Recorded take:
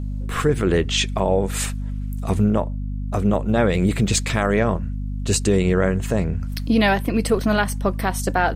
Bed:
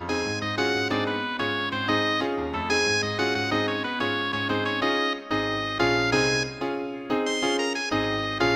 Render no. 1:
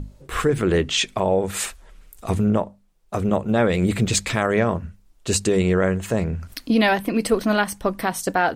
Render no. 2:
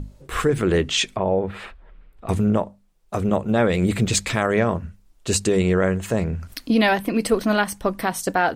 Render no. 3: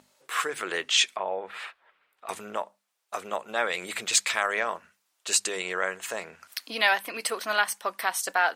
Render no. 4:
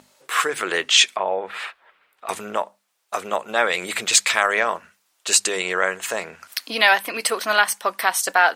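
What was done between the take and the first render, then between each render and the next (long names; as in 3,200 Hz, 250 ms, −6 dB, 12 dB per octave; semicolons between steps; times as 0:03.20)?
mains-hum notches 50/100/150/200/250 Hz
0:01.16–0:02.29: high-frequency loss of the air 430 metres
high-pass filter 980 Hz 12 dB per octave
level +7.5 dB; brickwall limiter −2 dBFS, peak gain reduction 1.5 dB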